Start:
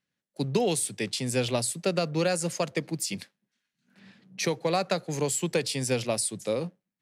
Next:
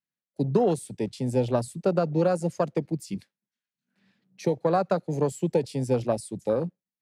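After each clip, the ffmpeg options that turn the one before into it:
ffmpeg -i in.wav -af "afwtdn=0.0282,volume=3.5dB" out.wav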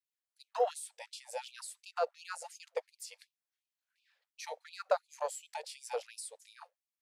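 ffmpeg -i in.wav -af "afftfilt=real='re*gte(b*sr/1024,450*pow(2400/450,0.5+0.5*sin(2*PI*2.8*pts/sr)))':imag='im*gte(b*sr/1024,450*pow(2400/450,0.5+0.5*sin(2*PI*2.8*pts/sr)))':win_size=1024:overlap=0.75,volume=-2.5dB" out.wav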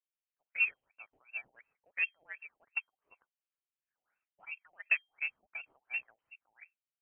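ffmpeg -i in.wav -af "adynamicsmooth=sensitivity=1.5:basefreq=1400,lowpass=frequency=2700:width_type=q:width=0.5098,lowpass=frequency=2700:width_type=q:width=0.6013,lowpass=frequency=2700:width_type=q:width=0.9,lowpass=frequency=2700:width_type=q:width=2.563,afreqshift=-3200,lowshelf=frequency=460:gain=4" out.wav

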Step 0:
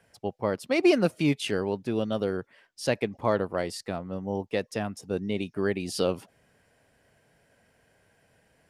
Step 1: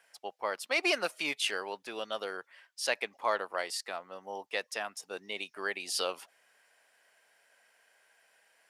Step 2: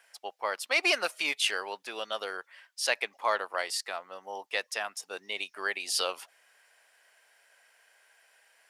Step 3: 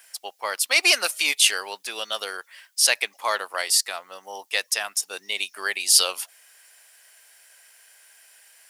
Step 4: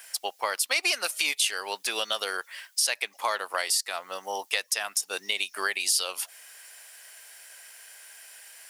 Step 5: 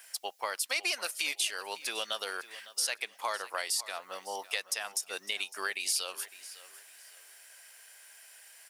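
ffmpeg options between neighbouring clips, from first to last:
ffmpeg -i in.wav -af "highpass=940,volume=2dB" out.wav
ffmpeg -i in.wav -af "equalizer=frequency=94:width=0.3:gain=-12.5,volume=4dB" out.wav
ffmpeg -i in.wav -af "crystalizer=i=4.5:c=0,volume=1dB" out.wav
ffmpeg -i in.wav -af "acompressor=threshold=-30dB:ratio=4,volume=5dB" out.wav
ffmpeg -i in.wav -af "aecho=1:1:556|1112|1668:0.141|0.0396|0.0111,volume=-6dB" out.wav

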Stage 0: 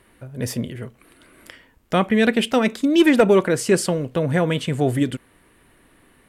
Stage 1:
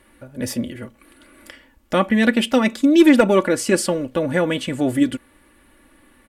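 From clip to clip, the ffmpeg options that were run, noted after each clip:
ffmpeg -i in.wav -af "aecho=1:1:3.5:0.63" out.wav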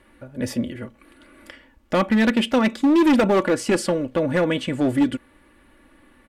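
ffmpeg -i in.wav -af "lowpass=frequency=3900:poles=1,asoftclip=type=hard:threshold=-13dB" out.wav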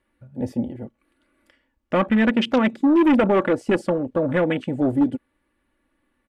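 ffmpeg -i in.wav -af "afwtdn=0.0398" out.wav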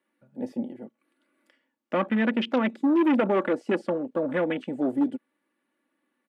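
ffmpeg -i in.wav -filter_complex "[0:a]highpass=frequency=190:width=0.5412,highpass=frequency=190:width=1.3066,acrossover=split=4700[link_01][link_02];[link_02]acompressor=threshold=-57dB:ratio=4:attack=1:release=60[link_03];[link_01][link_03]amix=inputs=2:normalize=0,volume=-5dB" out.wav

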